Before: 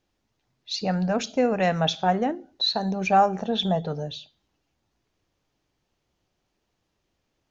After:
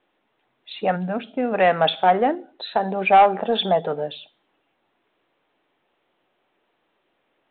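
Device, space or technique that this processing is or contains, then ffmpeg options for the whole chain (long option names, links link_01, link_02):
telephone: -filter_complex "[0:a]asplit=3[link_01][link_02][link_03];[link_01]afade=type=out:start_time=0.95:duration=0.02[link_04];[link_02]equalizer=frequency=125:width_type=o:width=1:gain=6,equalizer=frequency=500:width_type=o:width=1:gain=-9,equalizer=frequency=1000:width_type=o:width=1:gain=-8,equalizer=frequency=2000:width_type=o:width=1:gain=-7,equalizer=frequency=4000:width_type=o:width=1:gain=-9,afade=type=in:start_time=0.95:duration=0.02,afade=type=out:start_time=1.53:duration=0.02[link_05];[link_03]afade=type=in:start_time=1.53:duration=0.02[link_06];[link_04][link_05][link_06]amix=inputs=3:normalize=0,highpass=360,lowpass=3000,asoftclip=type=tanh:threshold=-15dB,volume=8.5dB" -ar 8000 -c:a pcm_mulaw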